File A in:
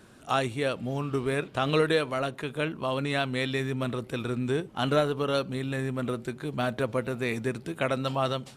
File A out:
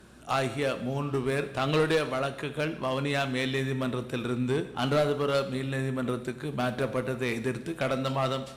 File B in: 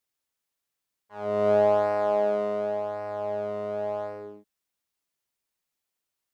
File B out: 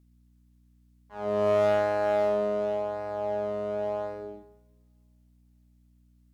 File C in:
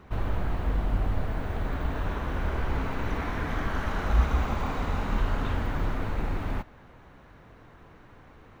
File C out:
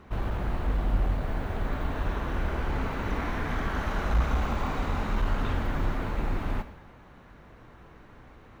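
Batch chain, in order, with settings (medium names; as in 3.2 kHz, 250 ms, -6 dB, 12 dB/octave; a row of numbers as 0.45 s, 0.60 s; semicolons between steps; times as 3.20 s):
hum 60 Hz, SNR 31 dB; one-sided clip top -21.5 dBFS; two-slope reverb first 0.88 s, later 3 s, from -28 dB, DRR 9.5 dB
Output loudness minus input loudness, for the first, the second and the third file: 0.0 LU, -1.0 LU, -0.5 LU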